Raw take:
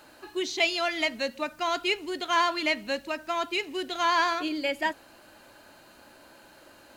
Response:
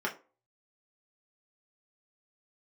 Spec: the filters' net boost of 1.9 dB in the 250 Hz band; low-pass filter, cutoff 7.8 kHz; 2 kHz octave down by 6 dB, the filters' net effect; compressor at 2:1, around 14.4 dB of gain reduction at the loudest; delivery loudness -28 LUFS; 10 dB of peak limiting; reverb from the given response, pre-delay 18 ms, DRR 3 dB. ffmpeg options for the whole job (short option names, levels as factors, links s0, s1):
-filter_complex "[0:a]lowpass=7800,equalizer=f=250:t=o:g=3,equalizer=f=2000:t=o:g=-7.5,acompressor=threshold=0.00316:ratio=2,alimiter=level_in=5.31:limit=0.0631:level=0:latency=1,volume=0.188,asplit=2[s0][s1];[1:a]atrim=start_sample=2205,adelay=18[s2];[s1][s2]afir=irnorm=-1:irlink=0,volume=0.316[s3];[s0][s3]amix=inputs=2:normalize=0,volume=7.94"